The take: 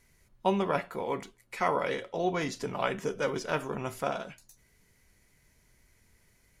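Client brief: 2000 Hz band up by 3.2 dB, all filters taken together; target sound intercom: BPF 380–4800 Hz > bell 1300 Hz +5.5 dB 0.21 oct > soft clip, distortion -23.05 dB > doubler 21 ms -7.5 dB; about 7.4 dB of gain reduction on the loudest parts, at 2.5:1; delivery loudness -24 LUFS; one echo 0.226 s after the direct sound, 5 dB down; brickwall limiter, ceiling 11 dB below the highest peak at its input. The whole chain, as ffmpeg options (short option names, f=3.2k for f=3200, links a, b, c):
-filter_complex "[0:a]equalizer=f=2k:t=o:g=3.5,acompressor=threshold=-33dB:ratio=2.5,alimiter=level_in=5.5dB:limit=-24dB:level=0:latency=1,volume=-5.5dB,highpass=380,lowpass=4.8k,equalizer=f=1.3k:t=o:w=0.21:g=5.5,aecho=1:1:226:0.562,asoftclip=threshold=-28dB,asplit=2[a][b];[b]adelay=21,volume=-7.5dB[c];[a][c]amix=inputs=2:normalize=0,volume=16.5dB"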